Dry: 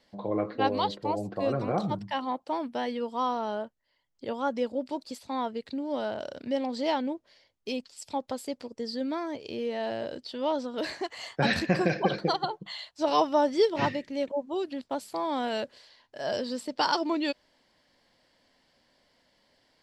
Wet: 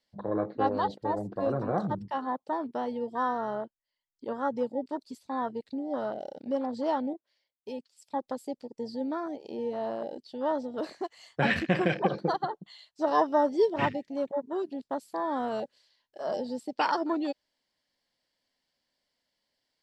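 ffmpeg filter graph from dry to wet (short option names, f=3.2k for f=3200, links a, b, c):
-filter_complex "[0:a]asettb=1/sr,asplit=3[a][b][c];[a]atrim=end=7.134[d];[b]atrim=start=7.13:end=8.14,asetpts=PTS-STARTPTS,afade=t=in:d=0.004:c=qsin,afade=t=out:st=1.006:d=0.004:c=qsin,highpass=f=390:p=1,equalizer=f=6k:w=0.71:g=-5[e];[c]atrim=start=8.136[f];[d][e]acrossfade=d=0.004:c1=hsin:c2=qsin[g];[g][f]acrossfade=d=0.004:c1=qsin:c2=hsin,afwtdn=0.0251,highshelf=f=2.7k:g=9,volume=-1dB"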